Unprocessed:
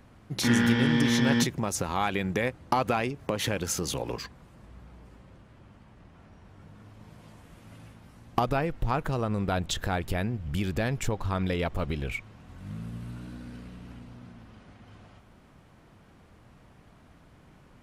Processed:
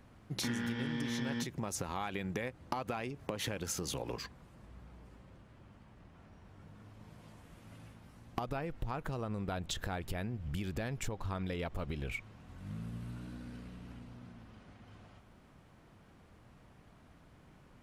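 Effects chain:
downward compressor 6 to 1, threshold −29 dBFS, peak gain reduction 11 dB
level −4.5 dB

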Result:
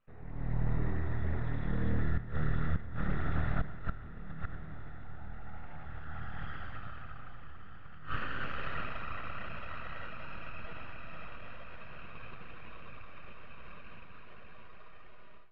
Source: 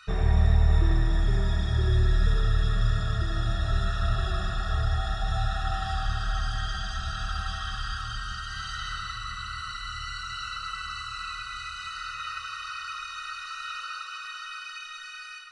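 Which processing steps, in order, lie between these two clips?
source passing by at 0:06.57, 11 m/s, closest 2.8 metres
gate with flip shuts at −38 dBFS, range −26 dB
convolution reverb RT60 1.5 s, pre-delay 48 ms, DRR 12.5 dB
full-wave rectification
low-pass filter 2,300 Hz 24 dB per octave
feedback delay with all-pass diffusion 1,361 ms, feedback 61%, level −15 dB
automatic gain control gain up to 15 dB
level +4.5 dB

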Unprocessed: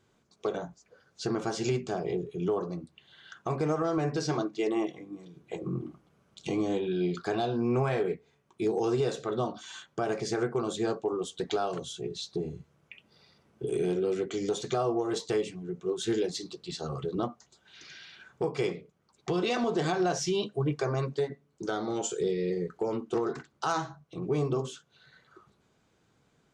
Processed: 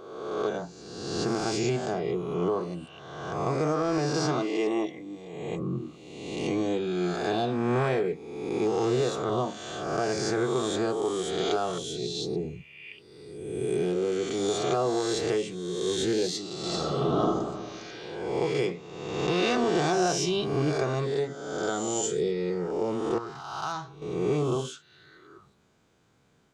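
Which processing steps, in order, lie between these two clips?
peak hold with a rise ahead of every peak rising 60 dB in 1.35 s
0:16.58–0:17.25: thrown reverb, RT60 1.7 s, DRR −1.5 dB
0:23.18–0:24.02: octave-band graphic EQ 250/500/2,000/8,000 Hz −10/−11/−8/−10 dB

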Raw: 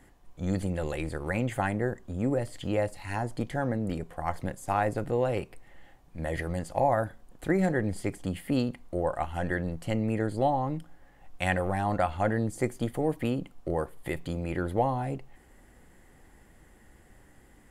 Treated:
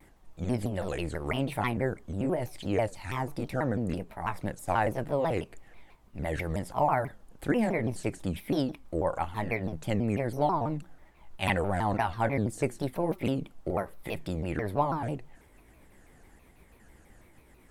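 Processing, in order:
pitch shifter gated in a rhythm +2.5 semitones, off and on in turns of 442 ms
pitch modulation by a square or saw wave saw down 6.1 Hz, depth 250 cents

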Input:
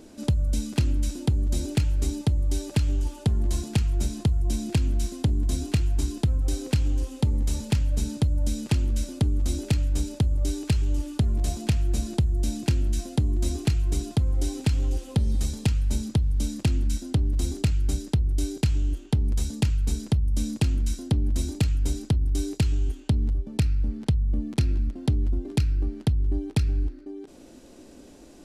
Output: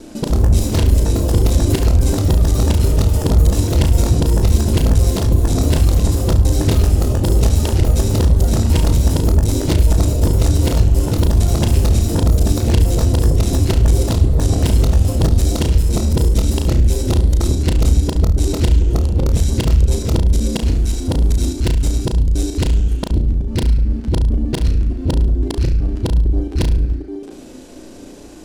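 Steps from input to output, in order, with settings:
reversed piece by piece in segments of 75 ms
sine wavefolder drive 7 dB, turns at −11.5 dBFS
flutter between parallel walls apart 6 metres, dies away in 0.38 s
delay with pitch and tempo change per echo 155 ms, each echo +5 semitones, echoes 2
level −1 dB

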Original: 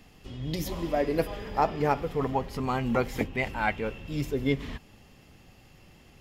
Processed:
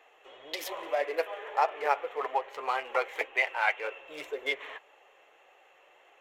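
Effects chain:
adaptive Wiener filter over 9 samples
inverse Chebyshev high-pass filter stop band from 240 Hz, stop band 40 dB
in parallel at +2.5 dB: downward compressor, threshold −37 dBFS, peak gain reduction 16.5 dB
on the sum: flanger 1.8 Hz, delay 2.3 ms, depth 5.2 ms, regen −52%
dynamic equaliser 2,400 Hz, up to +6 dB, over −46 dBFS, Q 0.82

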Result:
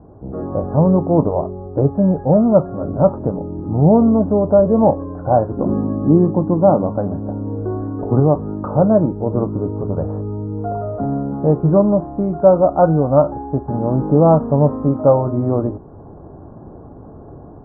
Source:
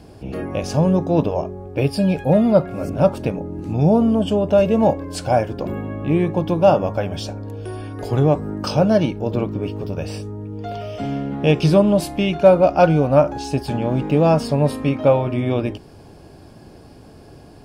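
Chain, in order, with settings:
Butterworth low-pass 1,300 Hz 48 dB per octave
0:05.57–0:08.20: parametric band 240 Hz +8.5 dB 1 octave
automatic gain control gain up to 6 dB

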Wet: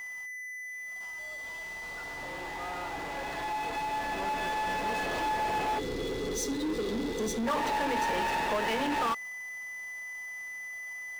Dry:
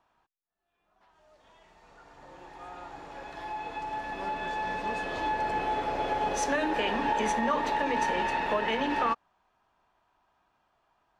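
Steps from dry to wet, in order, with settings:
gain on a spectral selection 0:05.79–0:07.47, 530–3,300 Hz −28 dB
steady tone 2,000 Hz −49 dBFS
power curve on the samples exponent 0.5
level −6 dB

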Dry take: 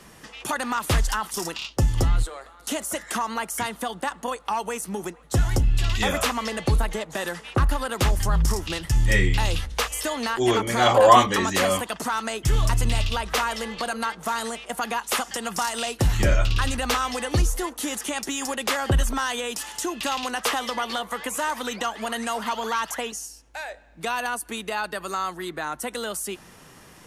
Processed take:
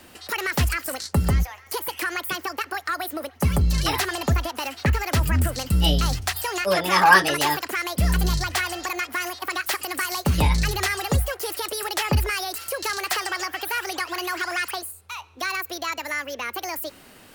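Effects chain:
change of speed 1.56×

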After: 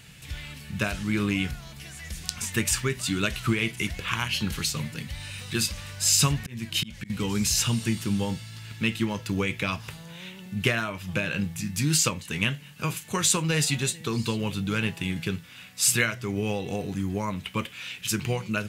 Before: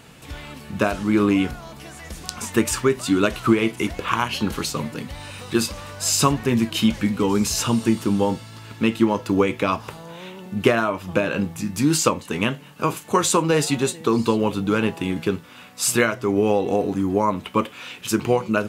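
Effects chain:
0:06.30–0:07.10: volume swells 342 ms
flat-topped bell 550 Hz −12 dB 2.8 octaves

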